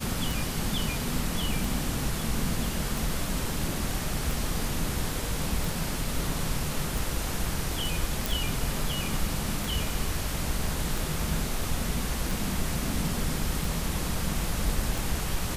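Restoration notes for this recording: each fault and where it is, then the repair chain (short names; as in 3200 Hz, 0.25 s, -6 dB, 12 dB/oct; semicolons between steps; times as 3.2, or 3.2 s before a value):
tick 45 rpm
8.26 pop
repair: de-click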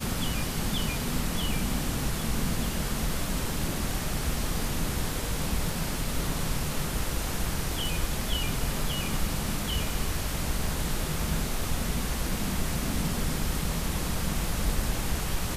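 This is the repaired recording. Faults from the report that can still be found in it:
none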